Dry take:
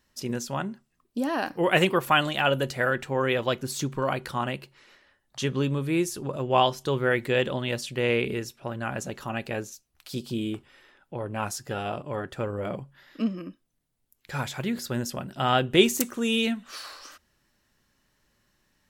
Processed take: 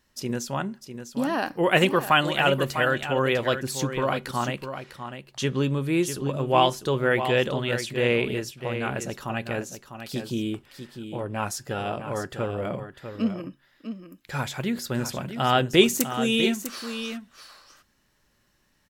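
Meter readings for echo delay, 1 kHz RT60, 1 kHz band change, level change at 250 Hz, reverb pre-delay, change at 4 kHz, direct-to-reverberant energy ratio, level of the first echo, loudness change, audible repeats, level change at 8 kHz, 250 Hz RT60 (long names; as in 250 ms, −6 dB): 650 ms, no reverb audible, +2.0 dB, +2.0 dB, no reverb audible, +2.0 dB, no reverb audible, −9.5 dB, +1.5 dB, 1, +2.0 dB, no reverb audible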